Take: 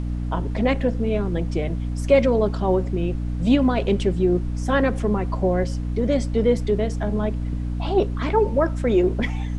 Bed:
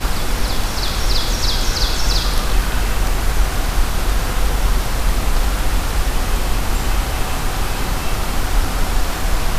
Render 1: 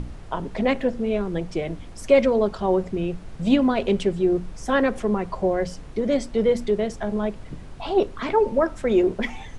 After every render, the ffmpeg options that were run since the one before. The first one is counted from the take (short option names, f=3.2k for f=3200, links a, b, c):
-af "bandreject=f=60:t=h:w=6,bandreject=f=120:t=h:w=6,bandreject=f=180:t=h:w=6,bandreject=f=240:t=h:w=6,bandreject=f=300:t=h:w=6"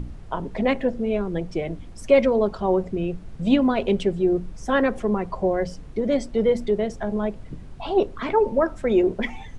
-af "afftdn=nr=6:nf=-40"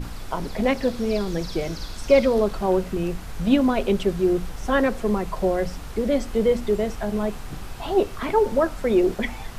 -filter_complex "[1:a]volume=-18dB[a];[0:a][a]amix=inputs=2:normalize=0"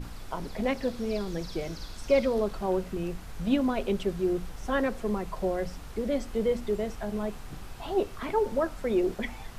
-af "volume=-7dB"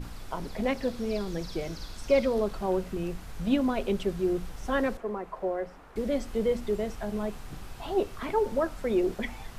-filter_complex "[0:a]asettb=1/sr,asplit=3[a][b][c];[a]atrim=end=4.974[d];[b]atrim=start=4.97:end=5.96,asetpts=PTS-STARTPTS,afade=t=in:d=0.004:c=qsin,afade=t=out:st=0.986:d=0.004:c=qsin,acrossover=split=290 2100:gain=0.2 1 0.158[e][f][g];[e][f][g]amix=inputs=3:normalize=0[h];[c]atrim=start=5.956[i];[d][h]acrossfade=d=0.004:c1=hsin:c2=qsin[j];[j][i]acrossfade=d=0.004:c1=qsin:c2=hsin"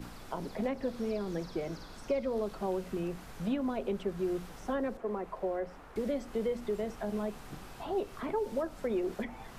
-filter_complex "[0:a]acrossover=split=140|860|1800[a][b][c][d];[a]acompressor=threshold=-50dB:ratio=4[e];[b]acompressor=threshold=-31dB:ratio=4[f];[c]acompressor=threshold=-47dB:ratio=4[g];[d]acompressor=threshold=-55dB:ratio=4[h];[e][f][g][h]amix=inputs=4:normalize=0"